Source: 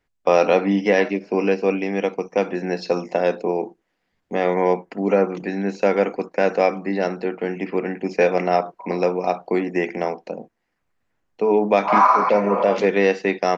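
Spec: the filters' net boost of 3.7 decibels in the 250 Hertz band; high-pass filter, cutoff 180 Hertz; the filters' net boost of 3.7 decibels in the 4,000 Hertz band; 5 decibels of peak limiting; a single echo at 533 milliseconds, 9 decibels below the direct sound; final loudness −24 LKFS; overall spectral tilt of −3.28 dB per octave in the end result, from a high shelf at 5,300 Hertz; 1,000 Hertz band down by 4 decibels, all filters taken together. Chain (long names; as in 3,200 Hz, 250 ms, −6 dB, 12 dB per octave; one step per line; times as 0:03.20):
high-pass filter 180 Hz
parametric band 250 Hz +7 dB
parametric band 1,000 Hz −6 dB
parametric band 4,000 Hz +7.5 dB
high-shelf EQ 5,300 Hz −4.5 dB
brickwall limiter −9 dBFS
single-tap delay 533 ms −9 dB
level −3 dB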